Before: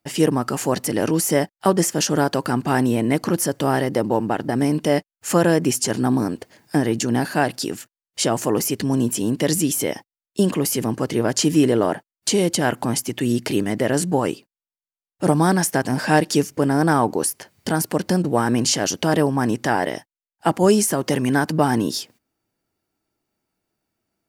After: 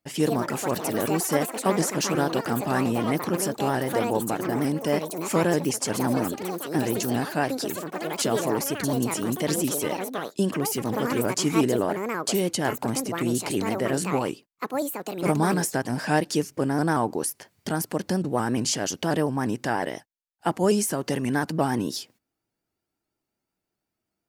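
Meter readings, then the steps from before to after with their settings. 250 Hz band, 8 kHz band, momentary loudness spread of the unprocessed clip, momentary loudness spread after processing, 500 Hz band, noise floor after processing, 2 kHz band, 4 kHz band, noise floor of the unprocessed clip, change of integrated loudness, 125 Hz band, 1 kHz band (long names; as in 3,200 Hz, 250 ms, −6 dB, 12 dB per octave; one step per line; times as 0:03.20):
−5.5 dB, −5.5 dB, 7 LU, 6 LU, −5.0 dB, −84 dBFS, −4.5 dB, −5.5 dB, below −85 dBFS, −5.5 dB, −6.0 dB, −4.5 dB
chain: delay with pitch and tempo change per echo 157 ms, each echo +6 semitones, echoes 3, each echo −6 dB
pitch modulation by a square or saw wave saw up 5.6 Hz, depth 100 cents
level −6 dB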